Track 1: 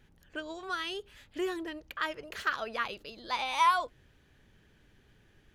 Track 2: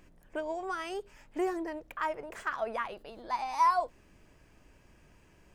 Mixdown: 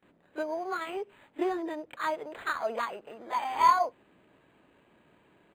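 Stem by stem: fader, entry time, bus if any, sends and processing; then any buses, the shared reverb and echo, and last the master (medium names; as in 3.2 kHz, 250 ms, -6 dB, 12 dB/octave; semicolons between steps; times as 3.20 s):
+0.5 dB, 0.00 s, no send, upward expansion 1.5:1, over -44 dBFS
+2.5 dB, 26 ms, no send, none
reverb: none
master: high-pass 200 Hz 12 dB/octave; decimation joined by straight lines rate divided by 8×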